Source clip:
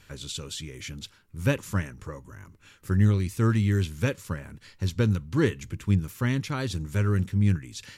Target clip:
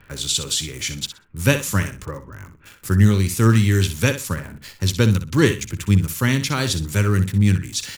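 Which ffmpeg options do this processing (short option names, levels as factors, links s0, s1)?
-filter_complex "[0:a]highshelf=f=2700:g=10.5,acrossover=split=100|2200[s0][s1][s2];[s2]aeval=exprs='val(0)*gte(abs(val(0)),0.00596)':c=same[s3];[s0][s1][s3]amix=inputs=3:normalize=0,aecho=1:1:62|124|186:0.282|0.0564|0.0113,volume=2.11"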